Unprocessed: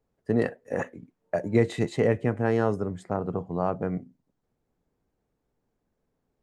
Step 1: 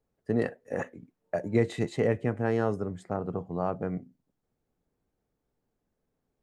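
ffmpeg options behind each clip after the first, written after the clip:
ffmpeg -i in.wav -af "bandreject=frequency=980:width=22,volume=-3dB" out.wav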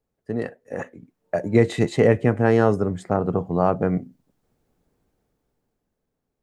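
ffmpeg -i in.wav -af "dynaudnorm=framelen=240:gausssize=11:maxgain=11.5dB" out.wav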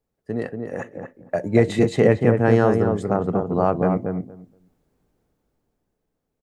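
ffmpeg -i in.wav -filter_complex "[0:a]asplit=2[link_01][link_02];[link_02]adelay=235,lowpass=frequency=1200:poles=1,volume=-4dB,asplit=2[link_03][link_04];[link_04]adelay=235,lowpass=frequency=1200:poles=1,volume=0.16,asplit=2[link_05][link_06];[link_06]adelay=235,lowpass=frequency=1200:poles=1,volume=0.16[link_07];[link_01][link_03][link_05][link_07]amix=inputs=4:normalize=0" out.wav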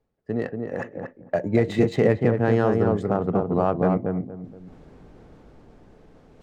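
ffmpeg -i in.wav -af "areverse,acompressor=mode=upward:threshold=-29dB:ratio=2.5,areverse,alimiter=limit=-8.5dB:level=0:latency=1:release=250,adynamicsmooth=sensitivity=5:basefreq=4000" out.wav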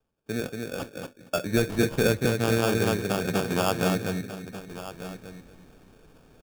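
ffmpeg -i in.wav -af "highshelf=frequency=3300:gain=10,acrusher=samples=22:mix=1:aa=0.000001,aecho=1:1:1191:0.211,volume=-4dB" out.wav

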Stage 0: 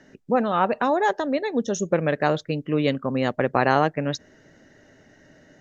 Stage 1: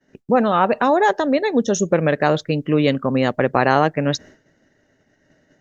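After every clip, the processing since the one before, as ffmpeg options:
ffmpeg -i in.wav -filter_complex "[0:a]agate=range=-33dB:threshold=-43dB:ratio=3:detection=peak,asplit=2[link_01][link_02];[link_02]alimiter=limit=-16.5dB:level=0:latency=1:release=131,volume=-1dB[link_03];[link_01][link_03]amix=inputs=2:normalize=0,volume=1.5dB" out.wav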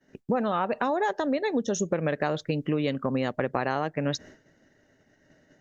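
ffmpeg -i in.wav -af "acompressor=threshold=-22dB:ratio=4,volume=-2dB" out.wav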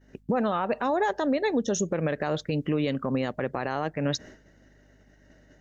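ffmpeg -i in.wav -af "alimiter=limit=-19dB:level=0:latency=1:release=32,aeval=exprs='val(0)+0.000891*(sin(2*PI*50*n/s)+sin(2*PI*2*50*n/s)/2+sin(2*PI*3*50*n/s)/3+sin(2*PI*4*50*n/s)/4+sin(2*PI*5*50*n/s)/5)':channel_layout=same,volume=2dB" out.wav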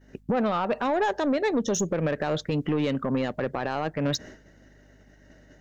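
ffmpeg -i in.wav -af "asoftclip=type=tanh:threshold=-21dB,volume=3dB" out.wav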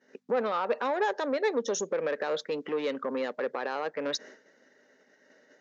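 ffmpeg -i in.wav -af "highpass=frequency=290:width=0.5412,highpass=frequency=290:width=1.3066,equalizer=frequency=320:width_type=q:width=4:gain=-9,equalizer=frequency=480:width_type=q:width=4:gain=4,equalizer=frequency=690:width_type=q:width=4:gain=-6,equalizer=frequency=2900:width_type=q:width=4:gain=-4,lowpass=frequency=6500:width=0.5412,lowpass=frequency=6500:width=1.3066,volume=-1.5dB" out.wav

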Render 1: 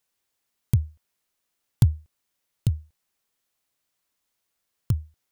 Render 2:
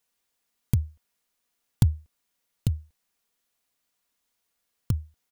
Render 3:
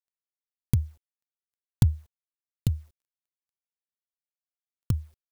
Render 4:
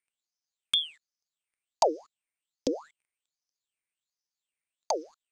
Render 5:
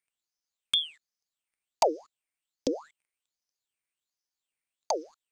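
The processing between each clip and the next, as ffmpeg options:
ffmpeg -i in.wav -af "aecho=1:1:4.2:0.32" out.wav
ffmpeg -i in.wav -af "equalizer=frequency=620:width=5.8:gain=-3,acrusher=bits=10:mix=0:aa=0.000001" out.wav
ffmpeg -i in.wav -filter_complex "[0:a]acrossover=split=160|3000[link_01][link_02][link_03];[link_02]acompressor=threshold=-37dB:ratio=6[link_04];[link_01][link_04][link_03]amix=inputs=3:normalize=0,lowpass=frequency=5600:width_type=q:width=14,aeval=exprs='val(0)*sin(2*PI*1900*n/s+1900*0.8/1.3*sin(2*PI*1.3*n/s))':channel_layout=same" out.wav
ffmpeg -i in.wav -af "aeval=exprs='0.282*(abs(mod(val(0)/0.282+3,4)-2)-1)':channel_layout=same" out.wav

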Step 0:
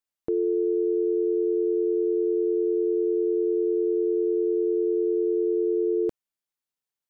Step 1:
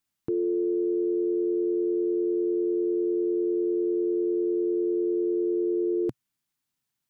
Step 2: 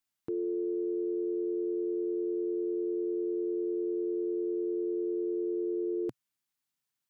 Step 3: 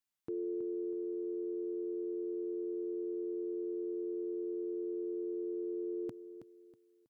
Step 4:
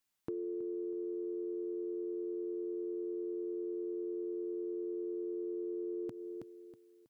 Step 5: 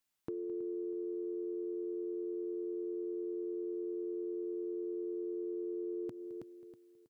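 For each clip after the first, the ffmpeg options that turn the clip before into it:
ffmpeg -i in.wav -af "equalizer=frequency=125:width_type=o:width=1:gain=9,equalizer=frequency=250:width_type=o:width=1:gain=5,equalizer=frequency=500:width_type=o:width=1:gain=-7,alimiter=level_in=3.5dB:limit=-24dB:level=0:latency=1:release=17,volume=-3.5dB,volume=7dB" out.wav
ffmpeg -i in.wav -af "lowshelf=frequency=290:gain=-7.5,volume=-3.5dB" out.wav
ffmpeg -i in.wav -af "aecho=1:1:322|644|966:0.282|0.0846|0.0254,volume=-5dB" out.wav
ffmpeg -i in.wav -af "acompressor=threshold=-43dB:ratio=5,volume=6dB" out.wav
ffmpeg -i in.wav -af "aecho=1:1:214:0.15,volume=-1dB" out.wav

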